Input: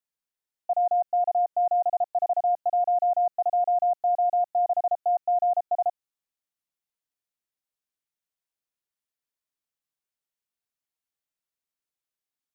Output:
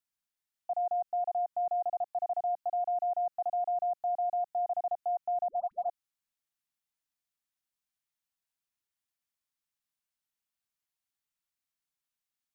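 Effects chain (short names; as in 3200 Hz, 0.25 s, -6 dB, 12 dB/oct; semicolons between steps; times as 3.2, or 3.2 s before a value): bell 450 Hz -14.5 dB 0.62 oct; limiter -26.5 dBFS, peak gain reduction 4.5 dB; 5.48–5.89 dispersion highs, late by 0.116 s, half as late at 600 Hz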